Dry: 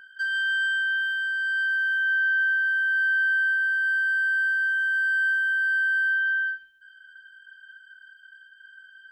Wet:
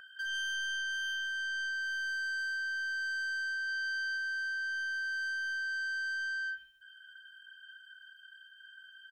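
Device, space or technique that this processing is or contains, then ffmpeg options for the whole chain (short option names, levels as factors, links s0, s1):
soft clipper into limiter: -filter_complex "[0:a]asoftclip=type=tanh:threshold=0.0596,alimiter=level_in=1.5:limit=0.0631:level=0:latency=1,volume=0.668,asplit=3[s0][s1][s2];[s0]afade=t=out:st=3.67:d=0.02[s3];[s1]equalizer=f=4000:w=1.5:g=5.5,afade=t=in:st=3.67:d=0.02,afade=t=out:st=4.16:d=0.02[s4];[s2]afade=t=in:st=4.16:d=0.02[s5];[s3][s4][s5]amix=inputs=3:normalize=0,aecho=1:1:1.6:0.52"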